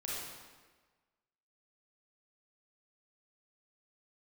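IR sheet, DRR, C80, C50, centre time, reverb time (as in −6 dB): −6.5 dB, 0.0 dB, −3.0 dB, 105 ms, 1.4 s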